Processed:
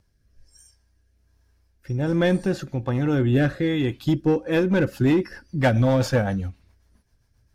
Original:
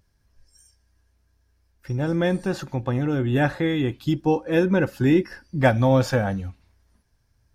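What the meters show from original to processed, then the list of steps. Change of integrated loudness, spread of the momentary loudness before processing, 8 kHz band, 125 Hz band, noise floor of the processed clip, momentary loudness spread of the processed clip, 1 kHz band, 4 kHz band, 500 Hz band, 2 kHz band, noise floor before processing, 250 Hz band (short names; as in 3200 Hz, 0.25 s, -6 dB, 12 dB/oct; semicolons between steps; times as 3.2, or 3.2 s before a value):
0.0 dB, 9 LU, n/a, +1.0 dB, -65 dBFS, 8 LU, -3.5 dB, +0.5 dB, -0.5 dB, -1.0 dB, -66 dBFS, +0.5 dB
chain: in parallel at -7 dB: wavefolder -17.5 dBFS; on the sum: rotary speaker horn 1.2 Hz, later 7.5 Hz, at 4.2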